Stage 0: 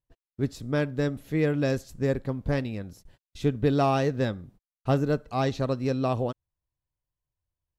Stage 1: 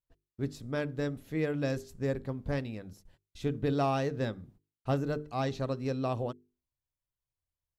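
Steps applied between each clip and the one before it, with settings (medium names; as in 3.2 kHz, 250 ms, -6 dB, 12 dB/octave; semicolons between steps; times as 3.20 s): hum notches 50/100/150/200/250/300/350/400/450 Hz; trim -5.5 dB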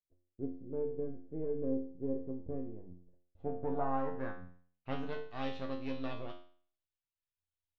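partial rectifier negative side -12 dB; low-pass sweep 410 Hz -> 3.2 kHz, 2.91–5.04 s; feedback comb 89 Hz, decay 0.48 s, harmonics all, mix 90%; trim +4 dB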